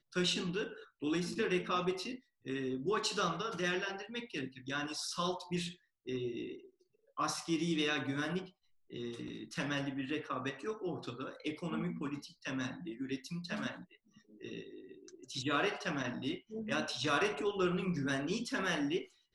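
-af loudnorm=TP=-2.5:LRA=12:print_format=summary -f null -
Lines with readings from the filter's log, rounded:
Input Integrated:    -36.7 LUFS
Input True Peak:     -17.7 dBTP
Input LRA:             5.3 LU
Input Threshold:     -47.1 LUFS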